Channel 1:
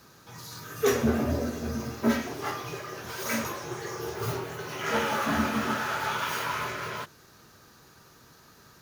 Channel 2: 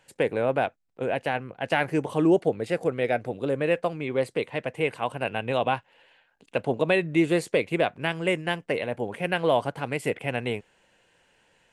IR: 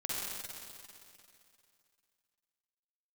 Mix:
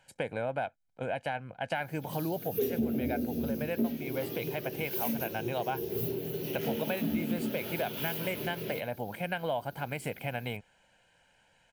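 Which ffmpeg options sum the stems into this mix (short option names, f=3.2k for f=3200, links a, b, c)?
-filter_complex "[0:a]firequalizer=gain_entry='entry(110,0);entry(170,10);entry(380,8);entry(1100,-20);entry(2800,1);entry(7800,-11);entry(12000,14)':delay=0.05:min_phase=1,adelay=1750,volume=-2dB[a];[1:a]aecho=1:1:1.3:0.58,volume=-4dB[b];[a][b]amix=inputs=2:normalize=0,acompressor=threshold=-31dB:ratio=3"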